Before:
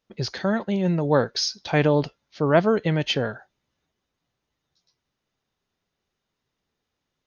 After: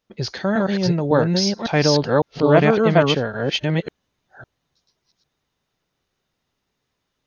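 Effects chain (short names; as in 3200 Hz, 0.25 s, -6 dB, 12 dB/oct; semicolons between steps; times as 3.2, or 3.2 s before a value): reverse delay 0.555 s, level 0 dB; gain +2 dB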